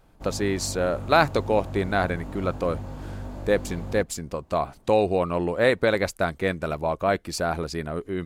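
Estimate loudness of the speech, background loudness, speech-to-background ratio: -25.5 LUFS, -37.0 LUFS, 11.5 dB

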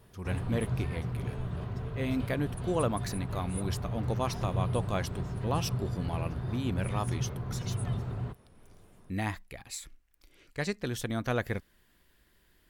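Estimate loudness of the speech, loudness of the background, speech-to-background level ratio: -35.0 LUFS, -36.0 LUFS, 1.0 dB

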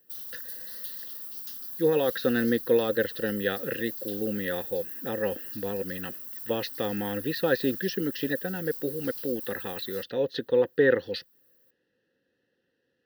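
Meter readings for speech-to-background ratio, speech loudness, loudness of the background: 7.0 dB, -29.0 LUFS, -36.0 LUFS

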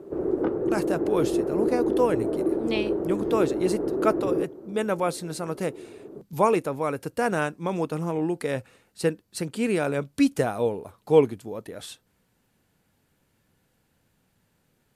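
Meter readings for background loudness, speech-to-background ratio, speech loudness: -27.0 LUFS, 0.0 dB, -27.0 LUFS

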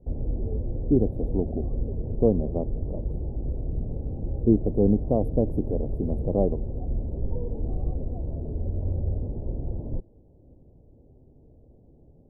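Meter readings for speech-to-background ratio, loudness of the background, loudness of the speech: 6.0 dB, -32.5 LUFS, -26.5 LUFS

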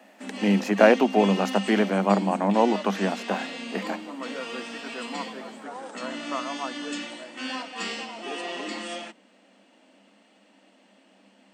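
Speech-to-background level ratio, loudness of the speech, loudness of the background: 11.0 dB, -23.0 LUFS, -34.0 LUFS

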